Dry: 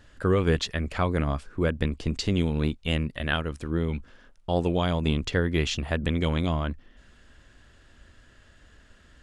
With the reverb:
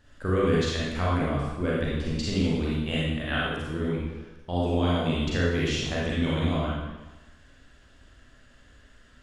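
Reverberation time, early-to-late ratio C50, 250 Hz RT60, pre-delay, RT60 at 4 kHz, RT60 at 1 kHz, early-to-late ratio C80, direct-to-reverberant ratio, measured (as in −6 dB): 1.1 s, −2.5 dB, 1.0 s, 33 ms, 1.0 s, 1.1 s, 1.5 dB, −6.5 dB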